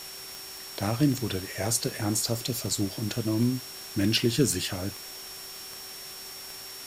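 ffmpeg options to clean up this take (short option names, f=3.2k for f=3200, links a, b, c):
-af "adeclick=t=4,bandreject=f=381.7:t=h:w=4,bandreject=f=763.4:t=h:w=4,bandreject=f=1.1451k:t=h:w=4,bandreject=f=1.5268k:t=h:w=4,bandreject=f=1.9085k:t=h:w=4,bandreject=f=5.5k:w=30,afftdn=nr=30:nf=-42"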